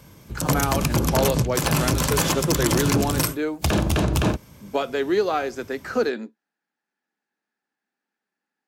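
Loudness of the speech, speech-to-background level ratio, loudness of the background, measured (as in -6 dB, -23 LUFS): -26.5 LUFS, -4.0 dB, -22.5 LUFS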